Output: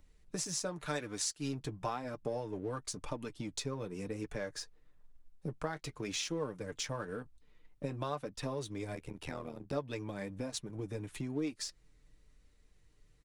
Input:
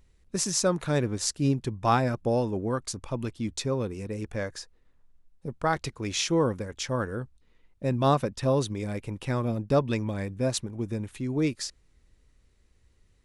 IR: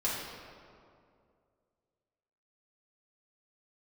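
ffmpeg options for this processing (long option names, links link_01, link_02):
-filter_complex "[0:a]asettb=1/sr,asplit=3[link_01][link_02][link_03];[link_01]atrim=end=0.864[link_04];[link_02]atrim=start=0.86:end=1.53,asetpts=PTS-STARTPTS,afade=type=in:duration=0.004:curve=qsin,afade=type=out:start_time=0.666:duration=0.004:curve=qsin,tiltshelf=frequency=670:gain=-6[link_05];[link_03]atrim=start=1.526[link_06];[link_04][link_05]acrossfade=duration=0.004:curve1=hsin:curve2=qsin[link_07];[link_07][link_06]acrossfade=duration=0.004:curve1=qsin:curve2=hsin,flanger=delay=3.4:depth=4:regen=-47:speed=0.96:shape=triangular,acrossover=split=240|3500[link_08][link_09][link_10];[link_08]asoftclip=type=tanh:threshold=-39dB[link_11];[link_11][link_09][link_10]amix=inputs=3:normalize=0,acompressor=threshold=-41dB:ratio=4,aecho=1:1:6.7:0.4,asplit=2[link_12][link_13];[link_13]aeval=exprs='sgn(val(0))*max(abs(val(0))-0.00237,0)':channel_layout=same,volume=-6dB[link_14];[link_12][link_14]amix=inputs=2:normalize=0,asettb=1/sr,asplit=3[link_15][link_16][link_17];[link_15]atrim=end=8.954[link_18];[link_16]atrim=start=8.95:end=9.73,asetpts=PTS-STARTPTS,afade=type=in:duration=0.004:curve=qsin,afade=type=out:start_time=0.776:duration=0.004:curve=qsin,tremolo=f=80:d=0.889[link_19];[link_17]atrim=start=9.726[link_20];[link_18][link_19]acrossfade=duration=0.004:curve1=hsin:curve2=qsin[link_21];[link_21][link_20]acrossfade=duration=0.004:curve1=qsin:curve2=hsin,volume=1dB"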